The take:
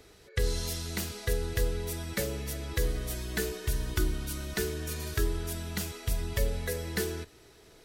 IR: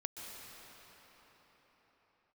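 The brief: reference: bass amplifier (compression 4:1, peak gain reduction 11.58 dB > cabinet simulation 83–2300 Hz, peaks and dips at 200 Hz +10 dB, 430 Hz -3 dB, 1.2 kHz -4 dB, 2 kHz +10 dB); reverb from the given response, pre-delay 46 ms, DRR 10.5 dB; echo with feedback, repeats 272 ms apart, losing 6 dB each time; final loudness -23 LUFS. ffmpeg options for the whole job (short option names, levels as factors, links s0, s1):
-filter_complex "[0:a]aecho=1:1:272|544|816|1088|1360|1632:0.501|0.251|0.125|0.0626|0.0313|0.0157,asplit=2[s0][s1];[1:a]atrim=start_sample=2205,adelay=46[s2];[s1][s2]afir=irnorm=-1:irlink=0,volume=0.316[s3];[s0][s3]amix=inputs=2:normalize=0,acompressor=threshold=0.02:ratio=4,highpass=f=83:w=0.5412,highpass=f=83:w=1.3066,equalizer=f=200:t=q:w=4:g=10,equalizer=f=430:t=q:w=4:g=-3,equalizer=f=1200:t=q:w=4:g=-4,equalizer=f=2000:t=q:w=4:g=10,lowpass=f=2300:w=0.5412,lowpass=f=2300:w=1.3066,volume=6.31"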